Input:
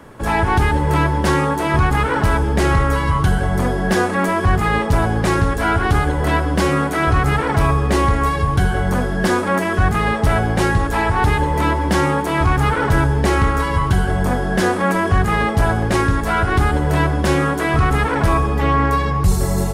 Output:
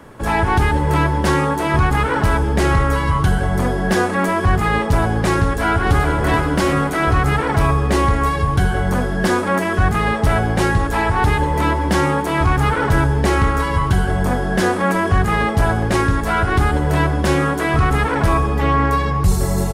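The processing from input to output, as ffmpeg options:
-filter_complex "[0:a]asplit=2[s0][s1];[s1]afade=t=in:st=5.43:d=0.01,afade=t=out:st=6.29:d=0.01,aecho=0:1:430|860|1290|1720:0.501187|0.175416|0.0613954|0.0214884[s2];[s0][s2]amix=inputs=2:normalize=0"

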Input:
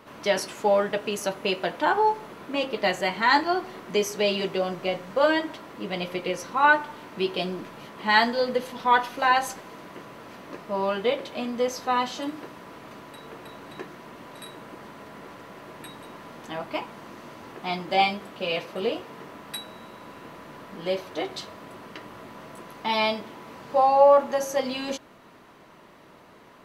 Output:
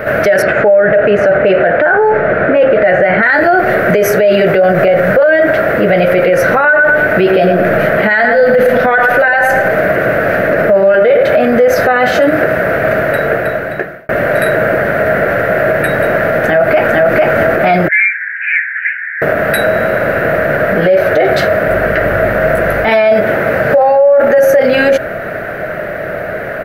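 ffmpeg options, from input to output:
-filter_complex "[0:a]asplit=3[s0][s1][s2];[s0]afade=t=out:st=0.41:d=0.02[s3];[s1]lowpass=2600,afade=t=in:st=0.41:d=0.02,afade=t=out:st=3.21:d=0.02[s4];[s2]afade=t=in:st=3.21:d=0.02[s5];[s3][s4][s5]amix=inputs=3:normalize=0,asettb=1/sr,asplit=3[s6][s7][s8];[s6]atrim=end=6.424[s9];[s7]atrim=start=6.42:end=11.23,asetpts=PTS-STARTPTS,afade=t=in:d=0.004:c=qsin,afade=t=out:st=4.806:d=0.004:c=qsin,asplit=2[s10][s11];[s11]adelay=108,lowpass=f=2000:p=1,volume=0.447,asplit=2[s12][s13];[s13]adelay=108,lowpass=f=2000:p=1,volume=0.34,asplit=2[s14][s15];[s15]adelay=108,lowpass=f=2000:p=1,volume=0.34,asplit=2[s16][s17];[s17]adelay=108,lowpass=f=2000:p=1,volume=0.34[s18];[s10][s12][s14][s16][s18]amix=inputs=5:normalize=0,atrim=end_sample=212121[s19];[s8]atrim=start=11.226[s20];[s9][s19]acrossfade=d=0.004:c1=hsin:c2=qsin[s21];[s21][s20]acrossfade=d=0.004:c1=qsin:c2=hsin,asplit=2[s22][s23];[s23]afade=t=in:st=16.26:d=0.01,afade=t=out:st=17.13:d=0.01,aecho=0:1:450|900|1350|1800:0.841395|0.210349|0.0525872|0.0131468[s24];[s22][s24]amix=inputs=2:normalize=0,asettb=1/sr,asplit=3[s25][s26][s27];[s25]atrim=end=17.884[s28];[s26]atrim=start=17.88:end=19.22,asetpts=PTS-STARTPTS,afade=t=in:d=0.004:c=qsin,afade=t=out:st=1.336:d=0.004:c=qsin,asuperpass=centerf=1900:order=8:qfactor=2.6[s29];[s27]atrim=start=19.216[s30];[s28][s29]acrossfade=d=0.004:c1=hsin:c2=qsin[s31];[s31][s30]acrossfade=d=0.004:c1=qsin:c2=hsin,asettb=1/sr,asplit=3[s32][s33][s34];[s32]atrim=end=21.684[s35];[s33]atrim=start=21.68:end=22.88,asetpts=PTS-STARTPTS,afade=t=in:d=0.004:c=qsin,afade=t=out:st=1.196:d=0.004:c=qsin,aeval=exprs='val(0)+0.00178*(sin(2*PI*50*n/s)+sin(2*PI*2*50*n/s)/2+sin(2*PI*3*50*n/s)/3+sin(2*PI*4*50*n/s)/4+sin(2*PI*5*50*n/s)/5)':c=same[s36];[s34]atrim=start=22.876[s37];[s35][s36]acrossfade=d=0.004:c1=hsin:c2=qsin[s38];[s38][s37]acrossfade=d=0.004:c1=qsin:c2=hsin,asplit=2[s39][s40];[s39]atrim=end=14.09,asetpts=PTS-STARTPTS,afade=t=out:st=13.12:d=0.97[s41];[s40]atrim=start=14.09,asetpts=PTS-STARTPTS,afade=t=in:d=0.004:c=hsin[s42];[s41][s42]concat=n=2:v=0:a=1,firequalizer=gain_entry='entry(120,0);entry(260,-10);entry(630,8);entry(970,-20);entry(1500,7);entry(3200,-17);entry(7500,-21);entry(13000,-5)':delay=0.05:min_phase=1,alimiter=level_in=44.7:limit=0.891:release=50:level=0:latency=1,volume=0.891"

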